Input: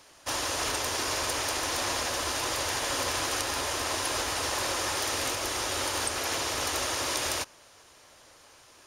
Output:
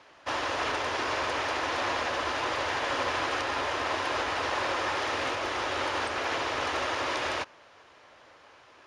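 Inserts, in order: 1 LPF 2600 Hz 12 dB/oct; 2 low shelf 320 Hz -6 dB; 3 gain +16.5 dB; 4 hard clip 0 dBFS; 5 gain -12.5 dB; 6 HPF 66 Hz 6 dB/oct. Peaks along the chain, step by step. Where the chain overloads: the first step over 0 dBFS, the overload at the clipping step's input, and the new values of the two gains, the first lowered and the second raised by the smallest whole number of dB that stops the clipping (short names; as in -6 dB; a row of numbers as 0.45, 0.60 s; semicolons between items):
-19.5, -20.0, -3.5, -3.5, -16.0, -16.5 dBFS; no overload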